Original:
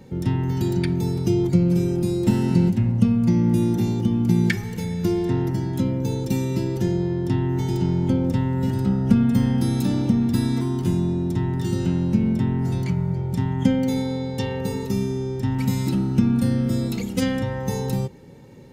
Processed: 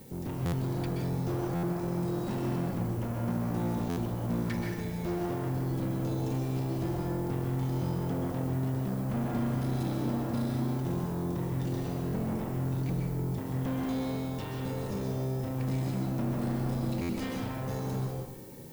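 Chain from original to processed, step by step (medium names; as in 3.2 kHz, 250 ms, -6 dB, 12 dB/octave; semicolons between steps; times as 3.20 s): valve stage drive 27 dB, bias 0.8; peak limiter -30 dBFS, peak gain reduction 7 dB; added noise violet -50 dBFS; treble shelf 5.1 kHz -7 dB; reverberation RT60 0.85 s, pre-delay 117 ms, DRR 0 dB; buffer glitch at 0.45/1.55/3.89/17.01 s, samples 512, times 6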